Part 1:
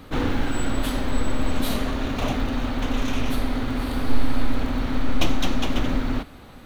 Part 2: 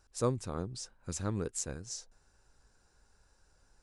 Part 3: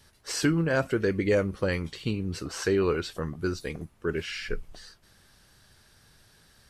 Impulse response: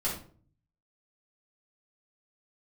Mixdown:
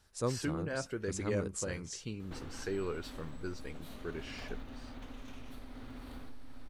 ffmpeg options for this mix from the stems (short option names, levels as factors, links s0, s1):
-filter_complex "[0:a]acompressor=threshold=0.0316:ratio=6,adelay=2200,volume=0.224[s0];[1:a]volume=0.708[s1];[2:a]volume=0.251[s2];[s0][s1][s2]amix=inputs=3:normalize=0"